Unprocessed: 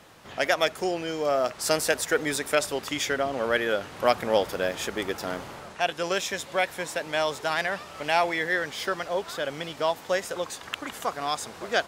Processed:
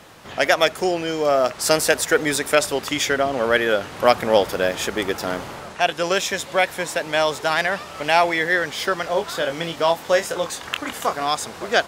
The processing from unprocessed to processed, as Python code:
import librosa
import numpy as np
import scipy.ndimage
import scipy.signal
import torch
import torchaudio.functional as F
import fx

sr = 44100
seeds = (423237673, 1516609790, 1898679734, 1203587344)

y = fx.doubler(x, sr, ms=24.0, db=-7, at=(9.03, 11.23), fade=0.02)
y = y * librosa.db_to_amplitude(6.5)